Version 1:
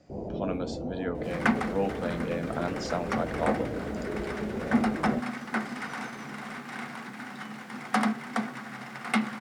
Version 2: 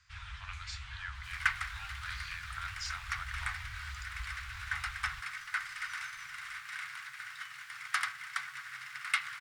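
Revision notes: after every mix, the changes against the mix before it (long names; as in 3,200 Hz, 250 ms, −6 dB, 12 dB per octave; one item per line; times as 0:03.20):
first sound: remove inverse Chebyshev band-stop filter 1,400–7,400 Hz, stop band 40 dB
master: add inverse Chebyshev band-stop filter 230–510 Hz, stop band 70 dB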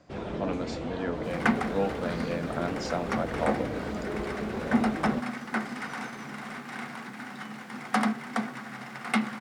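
master: remove inverse Chebyshev band-stop filter 230–510 Hz, stop band 70 dB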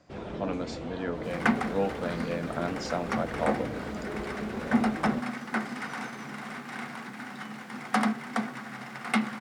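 first sound −3.0 dB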